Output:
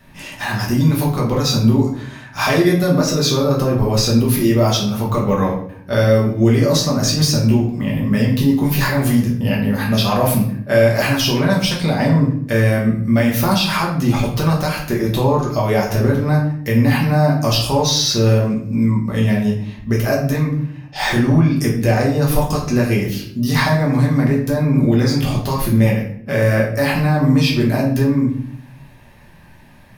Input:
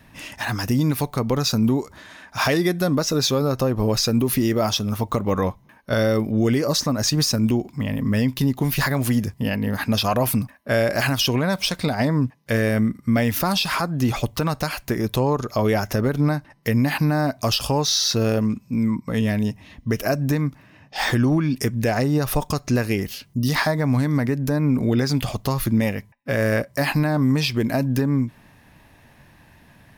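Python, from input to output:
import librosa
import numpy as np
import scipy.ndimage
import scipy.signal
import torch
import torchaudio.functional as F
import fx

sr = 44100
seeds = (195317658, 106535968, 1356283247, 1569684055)

y = fx.room_shoebox(x, sr, seeds[0], volume_m3=100.0, walls='mixed', distance_m=1.2)
y = y * librosa.db_to_amplitude(-1.0)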